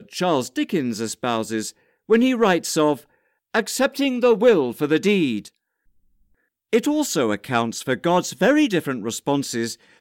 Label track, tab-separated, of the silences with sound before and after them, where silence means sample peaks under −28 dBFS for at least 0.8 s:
5.460000	6.730000	silence